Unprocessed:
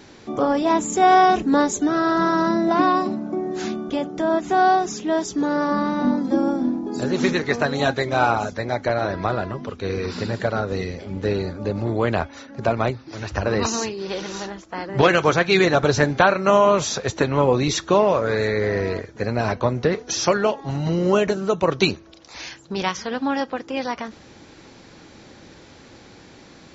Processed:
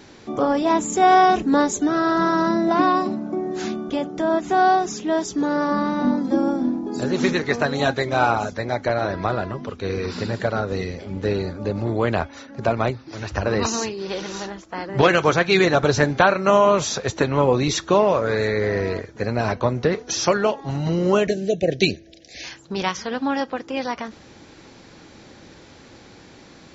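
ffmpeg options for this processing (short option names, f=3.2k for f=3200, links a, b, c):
-filter_complex "[0:a]asettb=1/sr,asplit=3[a][b][c];[a]atrim=end=21.274[d];[b]atrim=start=21.27:end=22.44,asetpts=PTS-STARTPTS,afade=t=in:d=0.004:c=qsin,afade=t=out:st=1.166:d=0.004:c=qsin,asuperstop=centerf=1100:order=12:qfactor=1.2[e];[c]atrim=start=22.436[f];[d][e]acrossfade=d=0.004:c1=hsin:c2=qsin[g];[g][f]acrossfade=d=0.004:c1=qsin:c2=hsin"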